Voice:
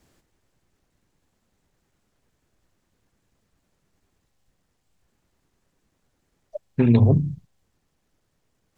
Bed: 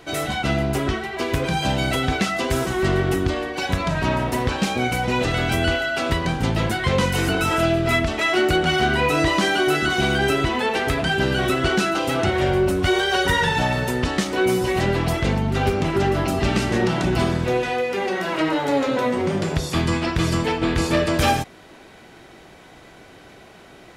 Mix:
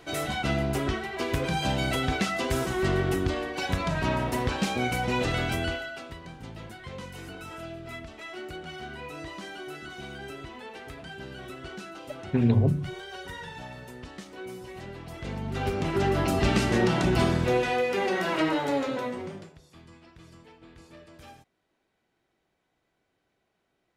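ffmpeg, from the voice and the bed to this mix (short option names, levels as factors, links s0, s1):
-filter_complex "[0:a]adelay=5550,volume=0.531[s0];[1:a]volume=3.98,afade=t=out:st=5.34:d=0.74:silence=0.177828,afade=t=in:st=15.09:d=1.27:silence=0.133352,afade=t=out:st=18.3:d=1.23:silence=0.0421697[s1];[s0][s1]amix=inputs=2:normalize=0"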